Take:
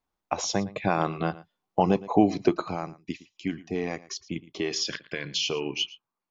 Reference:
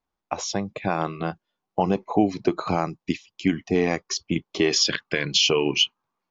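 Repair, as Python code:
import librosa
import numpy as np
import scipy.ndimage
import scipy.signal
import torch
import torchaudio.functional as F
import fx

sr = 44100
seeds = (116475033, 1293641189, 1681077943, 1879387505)

y = fx.fix_echo_inverse(x, sr, delay_ms=113, level_db=-19.0)
y = fx.gain(y, sr, db=fx.steps((0.0, 0.0), (2.61, 8.5)))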